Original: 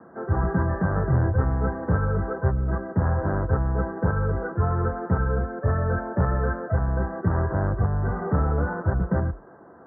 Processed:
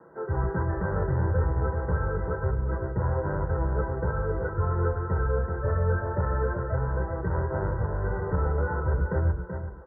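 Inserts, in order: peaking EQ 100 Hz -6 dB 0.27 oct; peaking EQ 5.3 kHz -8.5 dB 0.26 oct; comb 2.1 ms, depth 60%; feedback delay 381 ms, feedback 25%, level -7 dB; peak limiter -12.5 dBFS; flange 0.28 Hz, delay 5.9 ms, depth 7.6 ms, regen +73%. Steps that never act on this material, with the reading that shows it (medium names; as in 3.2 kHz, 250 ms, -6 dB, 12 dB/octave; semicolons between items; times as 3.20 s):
peaking EQ 5.3 kHz: input has nothing above 1.6 kHz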